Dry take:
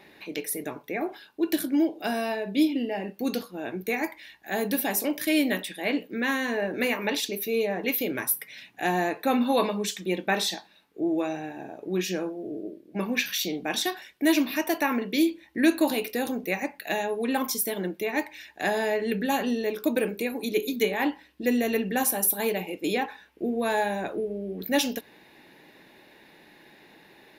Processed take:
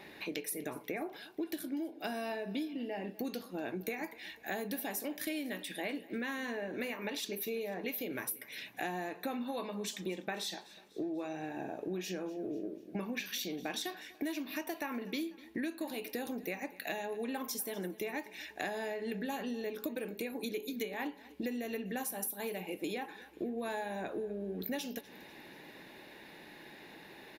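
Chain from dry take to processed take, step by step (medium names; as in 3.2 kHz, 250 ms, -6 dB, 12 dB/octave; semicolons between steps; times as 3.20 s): compression 12:1, threshold -36 dBFS, peak gain reduction 20.5 dB; on a send: feedback delay 247 ms, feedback 51%, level -20 dB; on the sum: trim +1 dB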